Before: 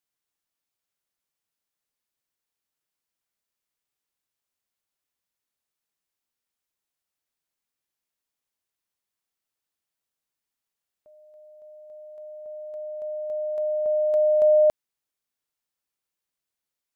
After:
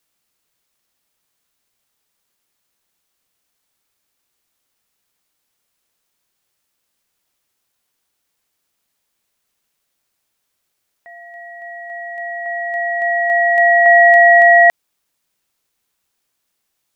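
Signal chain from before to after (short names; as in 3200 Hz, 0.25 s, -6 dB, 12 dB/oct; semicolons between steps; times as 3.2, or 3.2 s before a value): ring modulator 1300 Hz; maximiser +18.5 dB; gain -1 dB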